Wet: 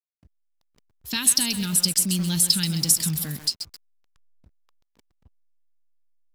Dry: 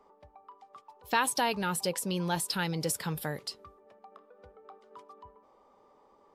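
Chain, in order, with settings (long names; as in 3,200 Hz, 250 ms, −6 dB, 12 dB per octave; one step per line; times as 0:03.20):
drawn EQ curve 240 Hz 0 dB, 520 Hz −24 dB, 790 Hz −25 dB, 5,000 Hz +7 dB
slack as between gear wheels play −48.5 dBFS
feedback echo at a low word length 132 ms, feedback 35%, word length 7 bits, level −8.5 dB
level +8 dB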